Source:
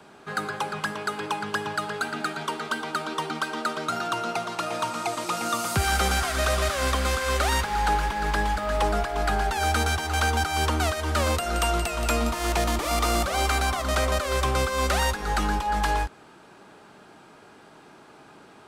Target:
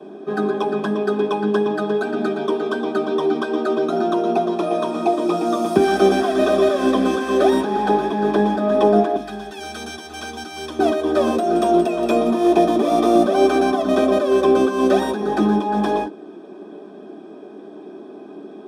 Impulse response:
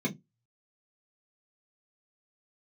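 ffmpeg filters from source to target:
-filter_complex "[0:a]asetnsamples=n=441:p=0,asendcmd='9.16 equalizer g -11;10.79 equalizer g 5.5',equalizer=f=440:w=0.33:g=6.5[a];[1:a]atrim=start_sample=2205,asetrate=66150,aresample=44100[b];[a][b]afir=irnorm=-1:irlink=0,volume=-4.5dB"

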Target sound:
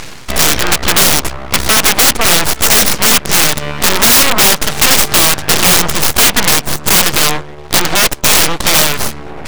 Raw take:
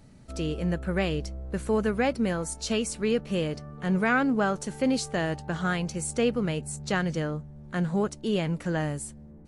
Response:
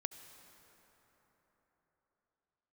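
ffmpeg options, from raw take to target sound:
-filter_complex "[0:a]asplit=2[a][b];[b]acompressor=threshold=-37dB:ratio=5,volume=0dB[c];[a][c]amix=inputs=2:normalize=0,aeval=exprs='0.266*(cos(1*acos(clip(val(0)/0.266,-1,1)))-cos(1*PI/2))+0.0841*(cos(2*acos(clip(val(0)/0.266,-1,1)))-cos(2*PI/2))+0.015*(cos(3*acos(clip(val(0)/0.266,-1,1)))-cos(3*PI/2))+0.015*(cos(5*acos(clip(val(0)/0.266,-1,1)))-cos(5*PI/2))+0.133*(cos(6*acos(clip(val(0)/0.266,-1,1)))-cos(6*PI/2))':c=same,areverse,acompressor=mode=upward:threshold=-24dB:ratio=2.5,areverse,bandpass=f=2.8k:t=q:w=1.4:csg=0,aeval=exprs='abs(val(0))':c=same,highshelf=f=2.5k:g=-3.5,aeval=exprs='(mod(29.9*val(0)+1,2)-1)/29.9':c=same,alimiter=level_in=34.5dB:limit=-1dB:release=50:level=0:latency=1,volume=-1dB"

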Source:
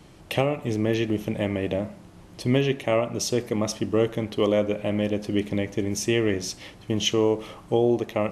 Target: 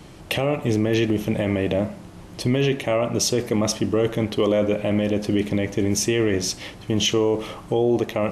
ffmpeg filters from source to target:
-af "alimiter=limit=-17.5dB:level=0:latency=1:release=11,volume=6.5dB"

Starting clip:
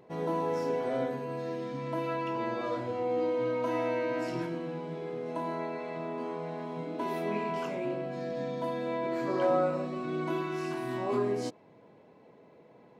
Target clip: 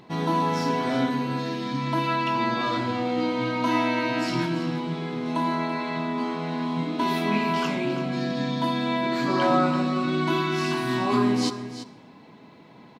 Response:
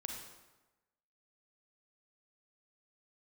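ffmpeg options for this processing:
-filter_complex "[0:a]equalizer=f=250:t=o:w=1:g=5,equalizer=f=500:t=o:w=1:g=-12,equalizer=f=1k:t=o:w=1:g=3,equalizer=f=4k:t=o:w=1:g=9,aecho=1:1:337:0.251,asplit=2[a][b];[1:a]atrim=start_sample=2205[c];[b][c]afir=irnorm=-1:irlink=0,volume=-9dB[d];[a][d]amix=inputs=2:normalize=0,volume=7.5dB"

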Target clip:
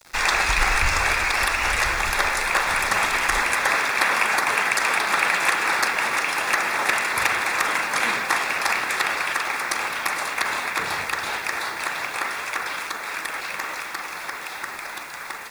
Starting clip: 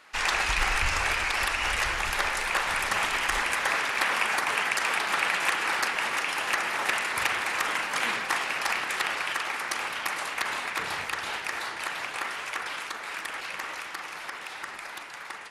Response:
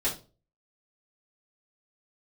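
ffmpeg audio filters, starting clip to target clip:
-filter_complex "[0:a]acrossover=split=5600[a][b];[a]acrusher=bits=7:mix=0:aa=0.000001[c];[c][b]amix=inputs=2:normalize=0,bandreject=f=3k:w=6.1,volume=6dB"

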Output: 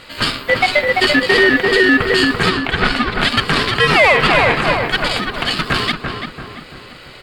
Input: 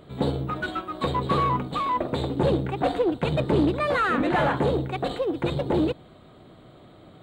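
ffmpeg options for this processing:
-filter_complex "[0:a]asplit=3[a][b][c];[a]afade=t=out:st=2.48:d=0.02[d];[b]lowpass=f=4k:p=1,afade=t=in:st=2.48:d=0.02,afade=t=out:st=3.18:d=0.02[e];[c]afade=t=in:st=3.18:d=0.02[f];[d][e][f]amix=inputs=3:normalize=0,asettb=1/sr,asplit=3[g][h][i];[g]atrim=end=4.364[j];[h]atrim=start=4.36:end=5.51,asetpts=PTS-STARTPTS,afade=t=in:d=0.004:c=qsin,afade=t=out:st=1.146:d=0.004:c=qsin,acompressor=threshold=-26dB:ratio=6[k];[i]atrim=start=5.506[l];[j][k]acrossfade=d=0.004:c1=hsin:c2=qsin[m];[m][l]acrossfade=d=0.004:c1=qsin:c2=hsin,highpass=1.4k,aeval=exprs='val(0)*sin(2*PI*730*n/s)':c=same,asplit=2[n][o];[o]adelay=339,lowpass=f=1.8k:p=1,volume=-4.5dB,asplit=2[p][q];[q]adelay=339,lowpass=f=1.8k:p=1,volume=0.49,asplit=2[r][s];[s]adelay=339,lowpass=f=1.8k:p=1,volume=0.49,asplit=2[t][u];[u]adelay=339,lowpass=f=1.8k:p=1,volume=0.49,asplit=2[v][w];[w]adelay=339,lowpass=f=1.8k:p=1,volume=0.49,asplit=2[x][y];[y]adelay=339,lowpass=f=1.8k:p=1,volume=0.49[z];[n][p][r][t][v][x][z]amix=inputs=7:normalize=0,alimiter=level_in=26dB:limit=-1dB:release=50:level=0:latency=1,volume=-1dB" -ar 48000 -c:a libopus -b:a 96k

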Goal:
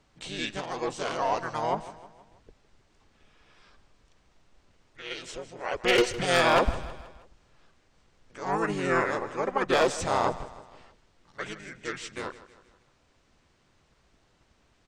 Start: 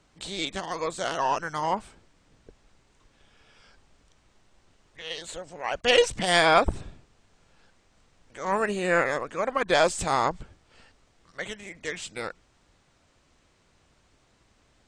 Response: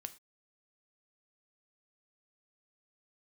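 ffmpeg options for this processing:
-filter_complex "[0:a]asplit=2[a][b];[b]asetrate=33038,aresample=44100,atempo=1.33484,volume=-1dB[c];[a][c]amix=inputs=2:normalize=0,aeval=exprs='0.335*(abs(mod(val(0)/0.335+3,4)-2)-1)':c=same,highshelf=f=8.3k:g=-4,asplit=2[d][e];[e]aecho=0:1:159|318|477|636:0.158|0.0777|0.0381|0.0186[f];[d][f]amix=inputs=2:normalize=0,volume=-4dB"

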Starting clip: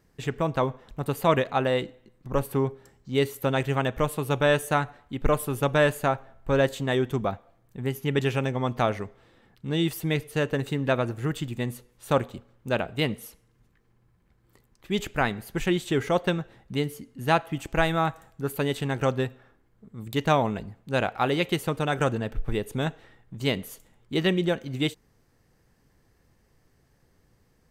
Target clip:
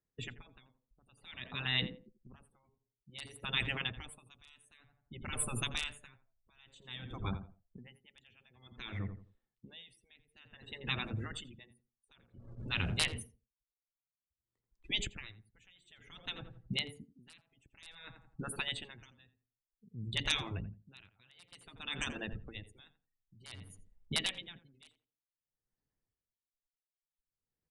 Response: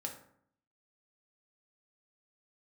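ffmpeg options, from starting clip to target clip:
-filter_complex "[0:a]asettb=1/sr,asplit=3[a][b][c];[a]atrim=end=12.364[d];[b]atrim=start=12.36:end=13.23,asetpts=PTS-STARTPTS,afade=t=in:d=0.004:c=qsin,afade=t=out:st=0.866:d=0.004:c=qsin,aeval=exprs='val(0)+0.5*0.0168*sgn(val(0))':c=same[e];[c]atrim=start=13.226[f];[d][e]acrossfade=d=0.004:c1=hsin:c2=qsin[g];[g][f]acrossfade=d=0.004:c1=qsin:c2=hsin,afftdn=nr=34:nf=-40,afftfilt=real='re*lt(hypot(re,im),0.158)':imag='im*lt(hypot(re,im),0.158)':win_size=1024:overlap=0.75,acrossover=split=200|2300[h][i][j];[h]aeval=exprs='0.0376*(cos(1*acos(clip(val(0)/0.0376,-1,1)))-cos(1*PI/2))+0.000668*(cos(2*acos(clip(val(0)/0.0376,-1,1)))-cos(2*PI/2))':c=same[k];[i]acompressor=threshold=-53dB:ratio=5[l];[j]aeval=exprs='(mod(15.8*val(0)+1,2)-1)/15.8':c=same[m];[k][l][m]amix=inputs=3:normalize=0,asplit=2[n][o];[o]adelay=85,lowpass=f=1.5k:p=1,volume=-10dB,asplit=2[p][q];[q]adelay=85,lowpass=f=1.5k:p=1,volume=0.27,asplit=2[r][s];[s]adelay=85,lowpass=f=1.5k:p=1,volume=0.27[t];[n][p][r][t]amix=inputs=4:normalize=0,aresample=22050,aresample=44100,aeval=exprs='val(0)*pow(10,-32*(0.5-0.5*cos(2*PI*0.54*n/s))/20)':c=same,volume=7dB"

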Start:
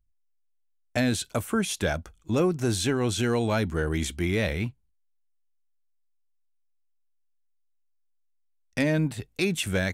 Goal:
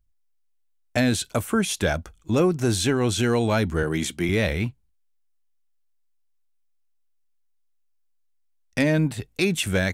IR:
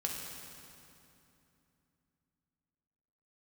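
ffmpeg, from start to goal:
-filter_complex "[0:a]asettb=1/sr,asplit=3[a][b][c];[a]atrim=end=3.834[d];[b]atrim=start=3.83:end=4.29,asetpts=PTS-STARTPTS,afade=t=in:d=0.004:c=qsin,afade=t=out:st=0.456:d=0.004:c=qsin,highpass=f=110:w=0.5412,highpass=f=110:w=1.3066[e];[c]atrim=start=4.286[f];[d][e]acrossfade=d=0.004:c1=hsin:c2=qsin[g];[g][f]acrossfade=d=0.004:c1=qsin:c2=hsin,volume=3.5dB"

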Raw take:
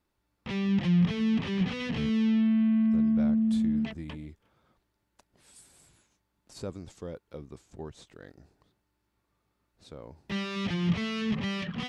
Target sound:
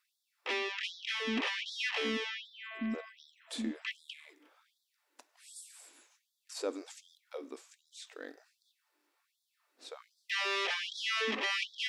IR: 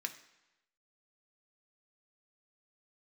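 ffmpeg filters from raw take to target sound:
-filter_complex "[0:a]asplit=2[a][b];[1:a]atrim=start_sample=2205,afade=t=out:st=0.27:d=0.01,atrim=end_sample=12348[c];[b][c]afir=irnorm=-1:irlink=0,volume=-0.5dB[d];[a][d]amix=inputs=2:normalize=0,afftfilt=real='re*gte(b*sr/1024,220*pow(3400/220,0.5+0.5*sin(2*PI*1.3*pts/sr)))':imag='im*gte(b*sr/1024,220*pow(3400/220,0.5+0.5*sin(2*PI*1.3*pts/sr)))':win_size=1024:overlap=0.75"

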